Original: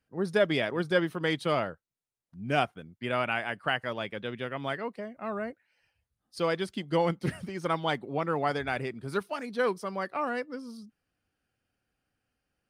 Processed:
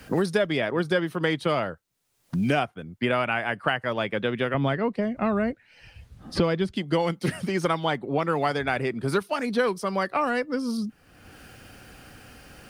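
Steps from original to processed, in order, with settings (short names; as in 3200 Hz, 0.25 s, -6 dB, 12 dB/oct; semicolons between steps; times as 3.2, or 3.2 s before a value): 4.54–6.76 RIAA curve playback; three-band squash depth 100%; gain +4 dB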